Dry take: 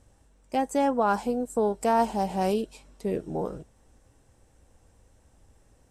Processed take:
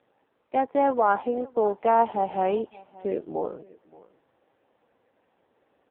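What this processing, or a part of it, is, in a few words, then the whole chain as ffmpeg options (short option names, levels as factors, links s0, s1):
satellite phone: -af "highpass=340,lowpass=3100,aecho=1:1:574:0.0794,volume=1.58" -ar 8000 -c:a libopencore_amrnb -b:a 5900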